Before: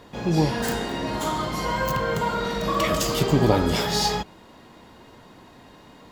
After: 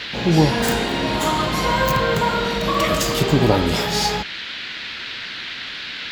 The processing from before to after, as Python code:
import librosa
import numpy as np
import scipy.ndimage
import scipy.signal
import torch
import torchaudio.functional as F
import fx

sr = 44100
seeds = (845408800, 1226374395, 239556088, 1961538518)

y = fx.rider(x, sr, range_db=10, speed_s=2.0)
y = fx.dmg_noise_band(y, sr, seeds[0], low_hz=1400.0, high_hz=4200.0, level_db=-35.0)
y = y * 10.0 ** (4.0 / 20.0)